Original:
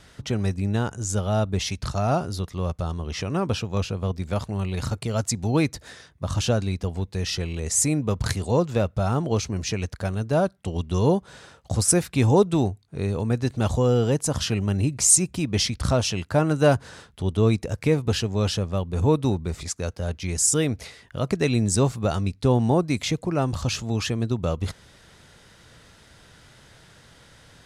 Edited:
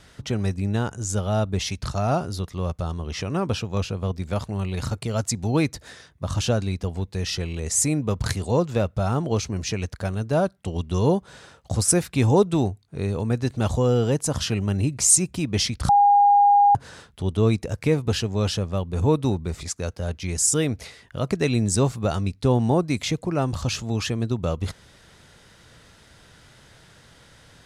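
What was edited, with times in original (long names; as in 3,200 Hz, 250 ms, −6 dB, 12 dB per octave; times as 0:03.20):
0:15.89–0:16.75: beep over 813 Hz −12 dBFS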